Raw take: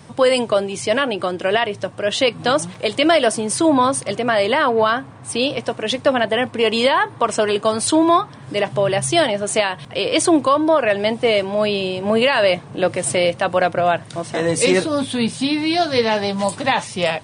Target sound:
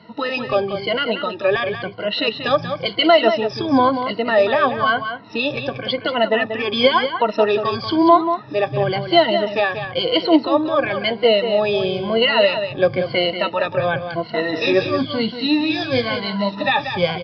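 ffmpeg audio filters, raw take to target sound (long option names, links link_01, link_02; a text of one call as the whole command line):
ffmpeg -i in.wav -filter_complex "[0:a]afftfilt=real='re*pow(10,22/40*sin(2*PI*(1.9*log(max(b,1)*sr/1024/100)/log(2)-(-0.98)*(pts-256)/sr)))':imag='im*pow(10,22/40*sin(2*PI*(1.9*log(max(b,1)*sr/1024/100)/log(2)-(-0.98)*(pts-256)/sr)))':win_size=1024:overlap=0.75,asplit=2[link_01][link_02];[link_02]aecho=0:1:186:0.376[link_03];[link_01][link_03]amix=inputs=2:normalize=0,aresample=11025,aresample=44100,volume=-5.5dB" out.wav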